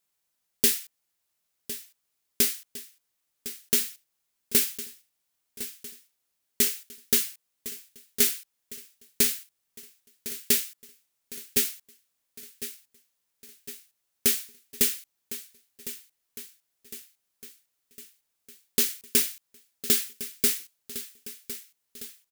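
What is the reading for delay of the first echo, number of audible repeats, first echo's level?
1,057 ms, 5, −14.0 dB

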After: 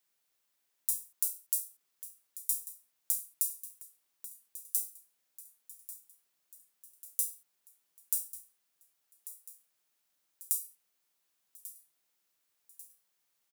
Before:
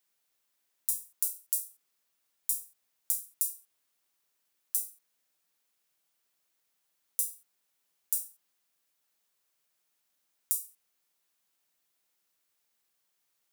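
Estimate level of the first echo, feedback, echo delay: −15.0 dB, 56%, 1,142 ms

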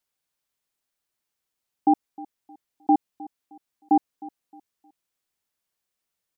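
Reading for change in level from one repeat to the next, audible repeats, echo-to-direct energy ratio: −10.0 dB, 2, −19.5 dB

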